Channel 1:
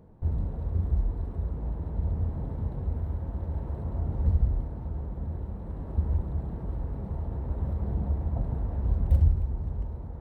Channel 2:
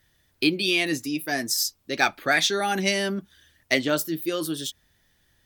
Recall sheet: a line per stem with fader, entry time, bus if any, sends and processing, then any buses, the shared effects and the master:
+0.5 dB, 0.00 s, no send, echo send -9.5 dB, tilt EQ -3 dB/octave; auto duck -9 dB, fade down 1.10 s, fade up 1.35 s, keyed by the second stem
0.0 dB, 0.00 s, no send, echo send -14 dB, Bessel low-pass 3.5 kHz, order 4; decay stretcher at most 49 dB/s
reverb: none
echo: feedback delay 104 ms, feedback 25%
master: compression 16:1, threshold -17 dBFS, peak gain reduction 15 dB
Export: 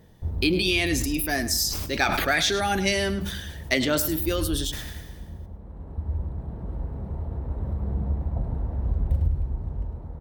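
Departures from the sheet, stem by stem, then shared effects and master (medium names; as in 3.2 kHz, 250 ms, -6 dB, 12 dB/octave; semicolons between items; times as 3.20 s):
stem 1: missing tilt EQ -3 dB/octave; stem 2: missing Bessel low-pass 3.5 kHz, order 4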